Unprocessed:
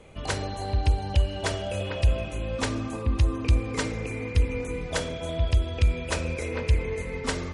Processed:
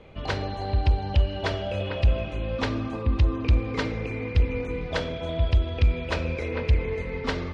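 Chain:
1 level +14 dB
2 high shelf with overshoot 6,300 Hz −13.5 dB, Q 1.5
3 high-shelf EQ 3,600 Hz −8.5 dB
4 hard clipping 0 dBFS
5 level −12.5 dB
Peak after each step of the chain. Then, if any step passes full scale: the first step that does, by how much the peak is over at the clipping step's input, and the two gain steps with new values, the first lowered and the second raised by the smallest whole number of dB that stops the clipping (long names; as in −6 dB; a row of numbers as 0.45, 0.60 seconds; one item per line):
+3.0, +3.0, +3.0, 0.0, −12.5 dBFS
step 1, 3.0 dB
step 1 +11 dB, step 5 −9.5 dB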